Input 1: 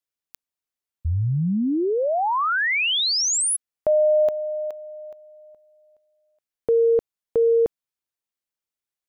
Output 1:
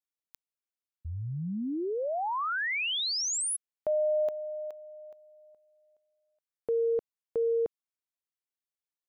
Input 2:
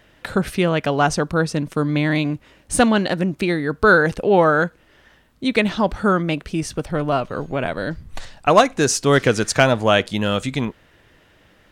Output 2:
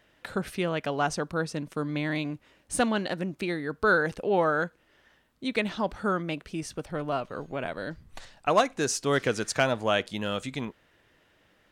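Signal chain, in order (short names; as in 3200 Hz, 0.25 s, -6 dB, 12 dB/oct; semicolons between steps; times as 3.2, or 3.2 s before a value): low shelf 150 Hz -6.5 dB; gain -9 dB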